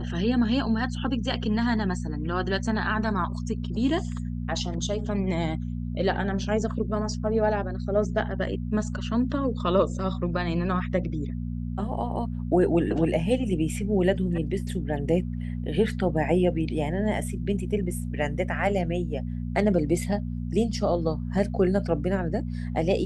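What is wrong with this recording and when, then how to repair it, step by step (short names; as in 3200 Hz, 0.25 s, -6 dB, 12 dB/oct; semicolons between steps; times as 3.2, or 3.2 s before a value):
hum 60 Hz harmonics 4 -31 dBFS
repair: de-hum 60 Hz, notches 4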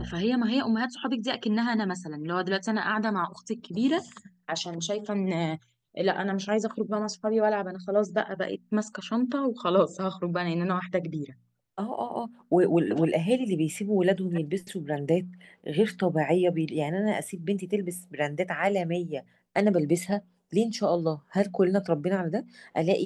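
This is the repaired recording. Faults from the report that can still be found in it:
none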